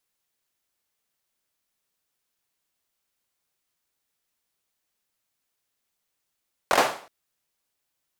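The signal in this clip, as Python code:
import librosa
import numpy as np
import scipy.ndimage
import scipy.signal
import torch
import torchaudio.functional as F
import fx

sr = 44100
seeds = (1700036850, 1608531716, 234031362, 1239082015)

y = fx.drum_clap(sr, seeds[0], length_s=0.37, bursts=4, spacing_ms=22, hz=730.0, decay_s=0.46)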